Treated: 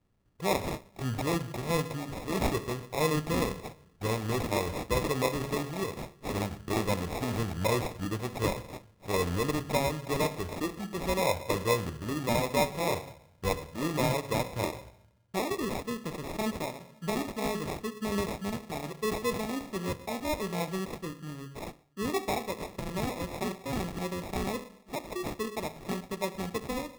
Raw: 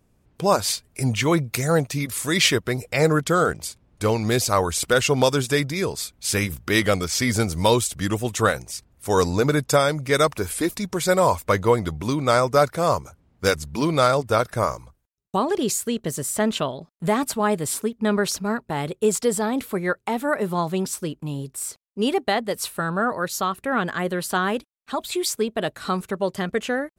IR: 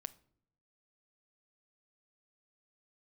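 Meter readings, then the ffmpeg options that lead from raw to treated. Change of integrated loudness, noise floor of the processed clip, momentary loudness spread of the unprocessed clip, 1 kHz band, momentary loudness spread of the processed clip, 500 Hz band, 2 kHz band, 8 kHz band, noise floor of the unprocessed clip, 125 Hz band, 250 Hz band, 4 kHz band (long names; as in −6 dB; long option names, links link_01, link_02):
−10.0 dB, −60 dBFS, 8 LU, −10.0 dB, 9 LU, −10.0 dB, −11.0 dB, −13.5 dB, −65 dBFS, −8.0 dB, −8.5 dB, −11.0 dB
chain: -filter_complex "[0:a]bandreject=frequency=70.32:width_type=h:width=4,bandreject=frequency=140.64:width_type=h:width=4,bandreject=frequency=210.96:width_type=h:width=4,bandreject=frequency=281.28:width_type=h:width=4,bandreject=frequency=351.6:width_type=h:width=4,bandreject=frequency=421.92:width_type=h:width=4,bandreject=frequency=492.24:width_type=h:width=4,bandreject=frequency=562.56:width_type=h:width=4,bandreject=frequency=632.88:width_type=h:width=4,bandreject=frequency=703.2:width_type=h:width=4,bandreject=frequency=773.52:width_type=h:width=4,bandreject=frequency=843.84:width_type=h:width=4,bandreject=frequency=914.16:width_type=h:width=4,bandreject=frequency=984.48:width_type=h:width=4,bandreject=frequency=1054.8:width_type=h:width=4,bandreject=frequency=1125.12:width_type=h:width=4,bandreject=frequency=1195.44:width_type=h:width=4,bandreject=frequency=1265.76:width_type=h:width=4,bandreject=frequency=1336.08:width_type=h:width=4,bandreject=frequency=1406.4:width_type=h:width=4,bandreject=frequency=1476.72:width_type=h:width=4,bandreject=frequency=1547.04:width_type=h:width=4,bandreject=frequency=1617.36:width_type=h:width=4,bandreject=frequency=1687.68:width_type=h:width=4,bandreject=frequency=1758:width_type=h:width=4,bandreject=frequency=1828.32:width_type=h:width=4,bandreject=frequency=1898.64:width_type=h:width=4,bandreject=frequency=1968.96:width_type=h:width=4,bandreject=frequency=2039.28:width_type=h:width=4,bandreject=frequency=2109.6:width_type=h:width=4,bandreject=frequency=2179.92:width_type=h:width=4,bandreject=frequency=2250.24:width_type=h:width=4,bandreject=frequency=2320.56:width_type=h:width=4,bandreject=frequency=2390.88:width_type=h:width=4,bandreject=frequency=2461.2:width_type=h:width=4,bandreject=frequency=2531.52:width_type=h:width=4,bandreject=frequency=2601.84:width_type=h:width=4[link_01];[1:a]atrim=start_sample=2205,asetrate=28665,aresample=44100[link_02];[link_01][link_02]afir=irnorm=-1:irlink=0,acrusher=samples=29:mix=1:aa=0.000001,volume=-7.5dB"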